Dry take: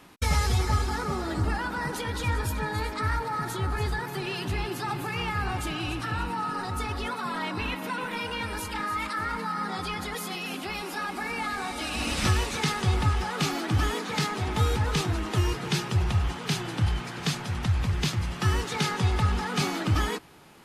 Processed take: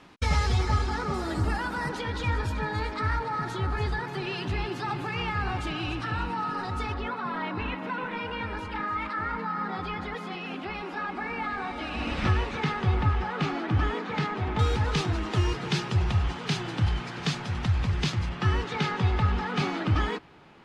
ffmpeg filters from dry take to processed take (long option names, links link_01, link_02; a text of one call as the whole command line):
ffmpeg -i in.wav -af "asetnsamples=nb_out_samples=441:pad=0,asendcmd='1.14 lowpass f 11000;1.89 lowpass f 4700;6.94 lowpass f 2500;14.59 lowpass f 5600;18.29 lowpass f 3400',lowpass=5300" out.wav